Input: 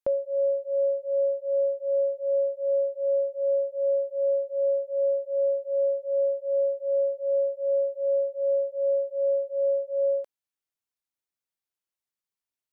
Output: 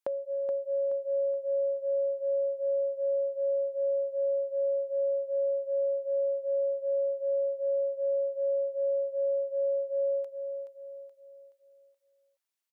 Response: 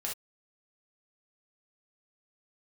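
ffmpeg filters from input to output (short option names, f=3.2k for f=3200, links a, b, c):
-filter_complex "[0:a]acompressor=threshold=-30dB:ratio=6,highpass=f=630:p=1,asplit=2[a][b];[b]aecho=0:1:425|850|1275|1700|2125:0.422|0.173|0.0709|0.0291|0.0119[c];[a][c]amix=inputs=2:normalize=0,volume=3dB"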